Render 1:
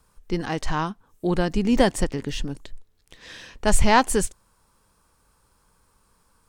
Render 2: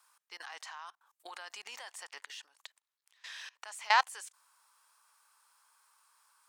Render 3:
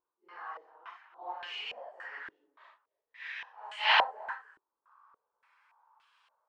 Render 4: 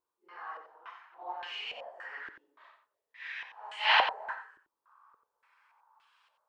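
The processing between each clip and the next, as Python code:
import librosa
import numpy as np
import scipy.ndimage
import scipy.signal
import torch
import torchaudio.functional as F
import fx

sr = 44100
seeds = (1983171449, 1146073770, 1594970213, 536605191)

y1 = scipy.signal.sosfilt(scipy.signal.butter(4, 900.0, 'highpass', fs=sr, output='sos'), x)
y1 = fx.level_steps(y1, sr, step_db=23)
y2 = fx.phase_scramble(y1, sr, seeds[0], window_ms=200)
y2 = y2 + 10.0 ** (-17.0 / 20.0) * np.pad(y2, (int(308 * sr / 1000.0), 0))[:len(y2)]
y2 = fx.filter_held_lowpass(y2, sr, hz=3.5, low_hz=340.0, high_hz=3000.0)
y3 = y2 + 10.0 ** (-9.5 / 20.0) * np.pad(y2, (int(90 * sr / 1000.0), 0))[:len(y2)]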